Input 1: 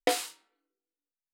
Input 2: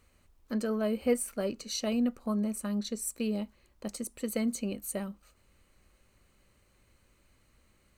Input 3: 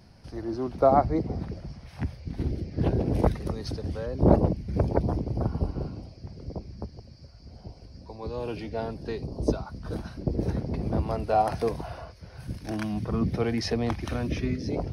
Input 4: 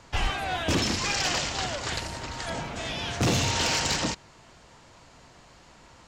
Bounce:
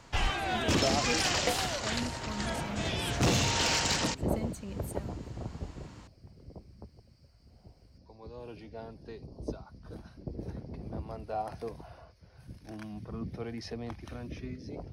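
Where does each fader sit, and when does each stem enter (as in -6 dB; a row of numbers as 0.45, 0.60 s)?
-5.0, -9.5, -12.0, -2.5 dB; 1.40, 0.00, 0.00, 0.00 s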